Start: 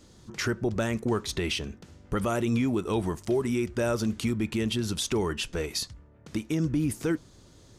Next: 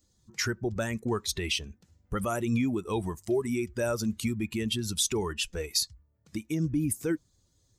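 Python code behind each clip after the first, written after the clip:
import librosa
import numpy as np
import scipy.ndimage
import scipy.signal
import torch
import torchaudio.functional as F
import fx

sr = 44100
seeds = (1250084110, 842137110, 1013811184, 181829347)

y = fx.bin_expand(x, sr, power=1.5)
y = fx.high_shelf(y, sr, hz=4200.0, db=9.0)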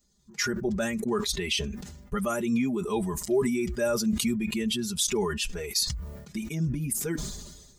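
y = x + 0.95 * np.pad(x, (int(4.9 * sr / 1000.0), 0))[:len(x)]
y = fx.sustainer(y, sr, db_per_s=46.0)
y = y * 10.0 ** (-2.0 / 20.0)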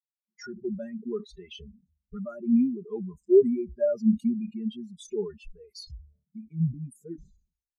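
y = fx.spectral_expand(x, sr, expansion=2.5)
y = y * 10.0 ** (2.5 / 20.0)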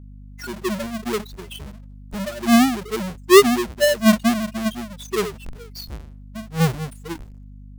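y = fx.halfwave_hold(x, sr)
y = fx.add_hum(y, sr, base_hz=50, snr_db=19)
y = y * 10.0 ** (4.5 / 20.0)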